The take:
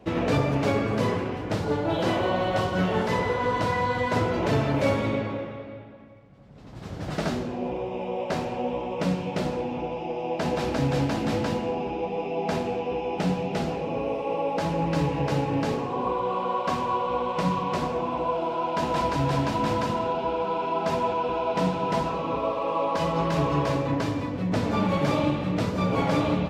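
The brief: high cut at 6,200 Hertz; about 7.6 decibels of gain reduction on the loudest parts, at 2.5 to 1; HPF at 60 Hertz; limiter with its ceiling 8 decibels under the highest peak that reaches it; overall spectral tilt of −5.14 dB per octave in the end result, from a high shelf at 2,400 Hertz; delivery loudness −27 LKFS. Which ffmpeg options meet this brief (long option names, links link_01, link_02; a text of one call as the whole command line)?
ffmpeg -i in.wav -af "highpass=60,lowpass=6200,highshelf=frequency=2400:gain=3.5,acompressor=threshold=-31dB:ratio=2.5,volume=8dB,alimiter=limit=-18.5dB:level=0:latency=1" out.wav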